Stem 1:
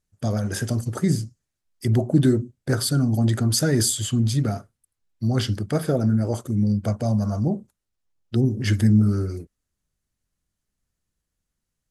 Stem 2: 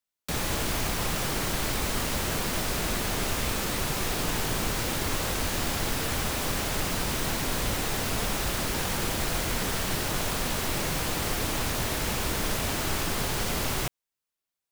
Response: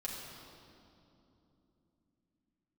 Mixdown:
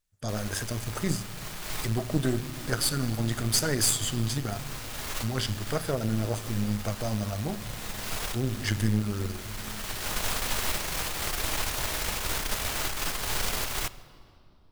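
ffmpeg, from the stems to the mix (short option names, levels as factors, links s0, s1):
-filter_complex "[0:a]volume=0.708,asplit=3[s0][s1][s2];[s1]volume=0.266[s3];[1:a]volume=0.841,asplit=2[s4][s5];[s5]volume=0.2[s6];[s2]apad=whole_len=648847[s7];[s4][s7]sidechaincompress=threshold=0.0112:ratio=4:attack=16:release=730[s8];[2:a]atrim=start_sample=2205[s9];[s3][s6]amix=inputs=2:normalize=0[s10];[s10][s9]afir=irnorm=-1:irlink=0[s11];[s0][s8][s11]amix=inputs=3:normalize=0,equalizer=f=210:t=o:w=2.8:g=-9.5,aeval=exprs='0.316*(cos(1*acos(clip(val(0)/0.316,-1,1)))-cos(1*PI/2))+0.0398*(cos(6*acos(clip(val(0)/0.316,-1,1)))-cos(6*PI/2))':c=same"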